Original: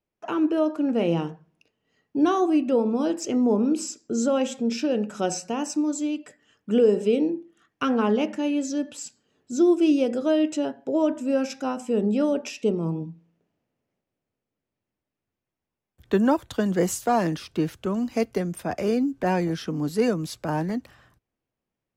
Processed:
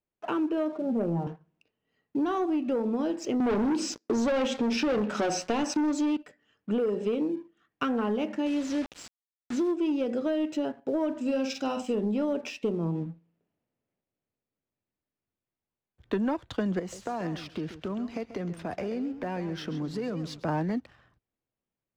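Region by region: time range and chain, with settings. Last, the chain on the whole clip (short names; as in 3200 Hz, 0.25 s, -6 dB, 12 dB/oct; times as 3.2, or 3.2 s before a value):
0.72–1.27 Chebyshev band-pass 110–790 Hz + comb 5.1 ms, depth 76%
3.4–6.17 HPF 220 Hz + notch 7400 Hz, Q 11 + sample leveller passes 3
8.46–9.72 bell 75 Hz -9 dB 0.68 oct + requantised 6-bit, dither none
11.21–11.95 resonant high shelf 2400 Hz +6.5 dB, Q 1.5 + doubler 49 ms -6.5 dB
16.79–20.44 compressor, threshold -29 dBFS + warbling echo 0.133 s, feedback 31%, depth 113 cents, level -12 dB
whole clip: LPF 4200 Hz 12 dB/oct; sample leveller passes 1; compressor, threshold -21 dBFS; gain -4 dB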